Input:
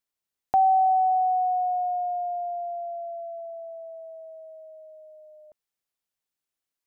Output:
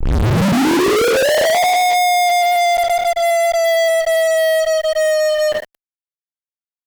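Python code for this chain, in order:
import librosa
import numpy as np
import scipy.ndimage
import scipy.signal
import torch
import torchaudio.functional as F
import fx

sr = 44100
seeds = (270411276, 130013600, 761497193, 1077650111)

y = fx.tape_start_head(x, sr, length_s=1.61)
y = fx.rev_double_slope(y, sr, seeds[0], early_s=0.78, late_s=2.6, knee_db=-22, drr_db=-10.0)
y = fx.fuzz(y, sr, gain_db=48.0, gate_db=-47.0)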